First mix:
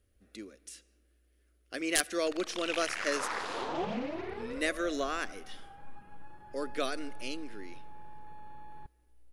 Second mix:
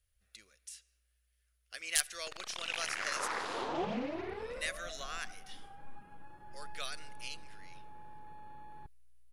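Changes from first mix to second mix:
speech: add guitar amp tone stack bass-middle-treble 10-0-10
background: send off

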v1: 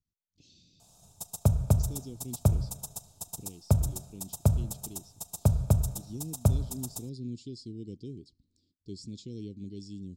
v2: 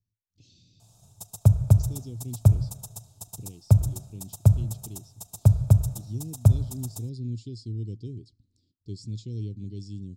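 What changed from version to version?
background: send off
master: add parametric band 110 Hz +14.5 dB 0.41 octaves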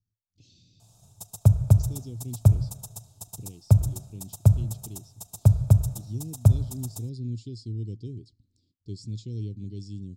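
nothing changed

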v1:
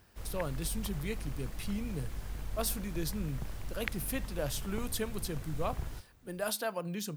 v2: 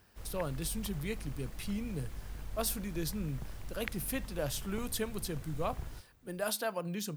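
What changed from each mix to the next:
background −3.5 dB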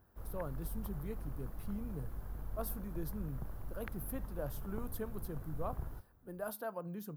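speech −5.5 dB
master: add flat-topped bell 4,200 Hz −15 dB 2.5 octaves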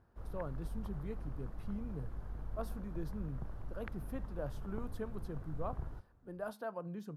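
master: add high-frequency loss of the air 77 metres

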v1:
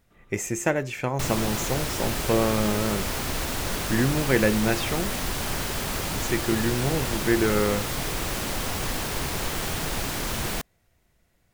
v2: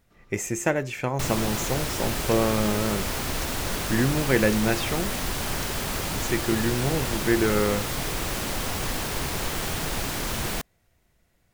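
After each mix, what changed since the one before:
first sound: remove linear-phase brick-wall low-pass 4,000 Hz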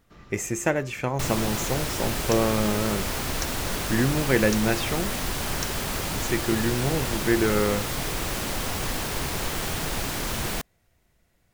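first sound +10.0 dB

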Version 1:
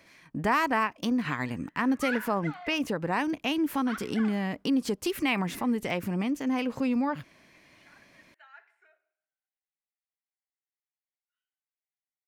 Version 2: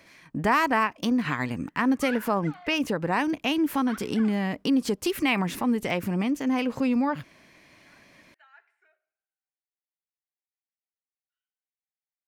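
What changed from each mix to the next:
speech +3.0 dB
reverb: off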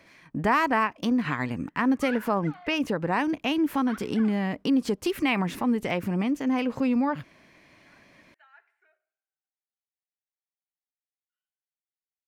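master: add high-shelf EQ 4,200 Hz −6.5 dB

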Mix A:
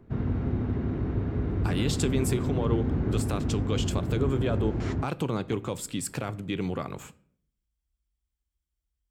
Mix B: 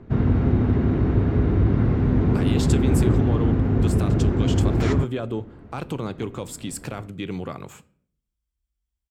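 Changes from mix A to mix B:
speech: entry +0.70 s
background +9.0 dB

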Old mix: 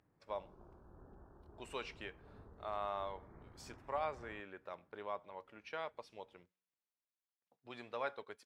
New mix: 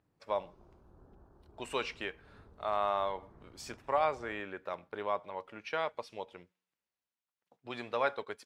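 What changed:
speech +9.0 dB
background: add high-frequency loss of the air 390 metres

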